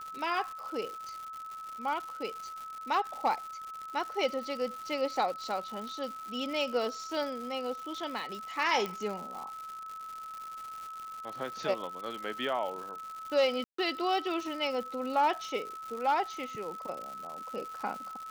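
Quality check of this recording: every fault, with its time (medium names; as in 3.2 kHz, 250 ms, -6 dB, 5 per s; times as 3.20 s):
crackle 210 per s -38 dBFS
whine 1.3 kHz -40 dBFS
8.86 s: pop -21 dBFS
13.64–13.78 s: dropout 144 ms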